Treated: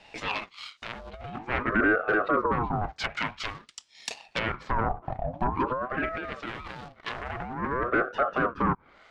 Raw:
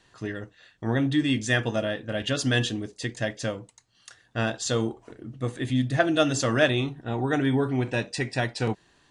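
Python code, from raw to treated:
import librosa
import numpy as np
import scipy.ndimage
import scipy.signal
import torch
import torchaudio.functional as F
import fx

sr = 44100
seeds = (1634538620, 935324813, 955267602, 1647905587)

y = fx.env_lowpass_down(x, sr, base_hz=530.0, full_db=-24.5)
y = fx.low_shelf(y, sr, hz=230.0, db=-11.0)
y = fx.leveller(y, sr, passes=1)
y = fx.over_compress(y, sr, threshold_db=-28.0, ratio=-0.5)
y = fx.fold_sine(y, sr, drive_db=12, ceiling_db=-14.0)
y = fx.filter_lfo_bandpass(y, sr, shape='sine', hz=0.33, low_hz=400.0, high_hz=4100.0, q=1.1)
y = fx.ring_lfo(y, sr, carrier_hz=650.0, swing_pct=50, hz=0.49)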